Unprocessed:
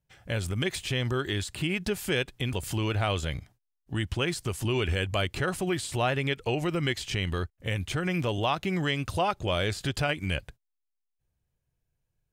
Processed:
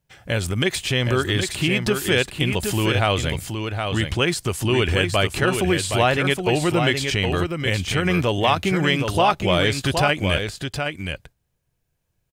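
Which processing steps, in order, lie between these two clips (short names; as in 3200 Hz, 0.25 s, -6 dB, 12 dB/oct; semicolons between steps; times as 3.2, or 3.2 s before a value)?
low shelf 99 Hz -5.5 dB; on a send: echo 0.768 s -6 dB; on the sum: gain +8.5 dB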